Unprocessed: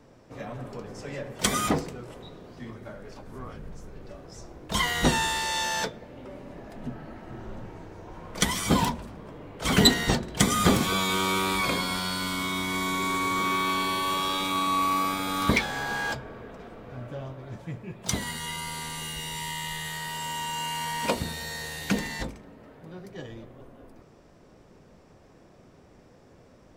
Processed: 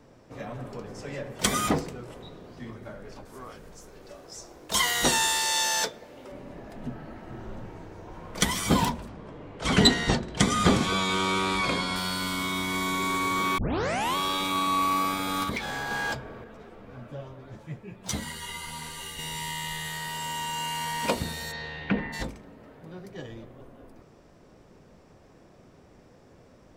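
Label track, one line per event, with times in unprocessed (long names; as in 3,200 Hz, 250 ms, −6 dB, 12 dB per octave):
3.250000	6.320000	bass and treble bass −10 dB, treble +8 dB
9.080000	11.960000	Bessel low-pass filter 7,200 Hz, order 4
13.580000	13.580000	tape start 0.58 s
15.430000	15.910000	downward compressor 4 to 1, threshold −28 dBFS
16.440000	19.190000	string-ensemble chorus
21.510000	22.120000	low-pass filter 4,800 Hz → 2,100 Hz 24 dB per octave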